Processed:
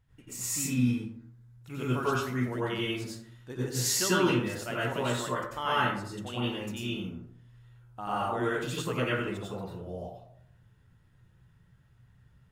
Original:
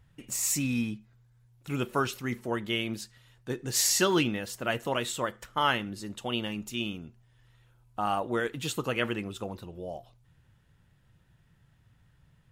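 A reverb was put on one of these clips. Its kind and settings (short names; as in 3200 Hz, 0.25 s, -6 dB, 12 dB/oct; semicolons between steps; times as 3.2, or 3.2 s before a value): plate-style reverb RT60 0.65 s, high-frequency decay 0.45×, pre-delay 80 ms, DRR -8 dB; gain -9 dB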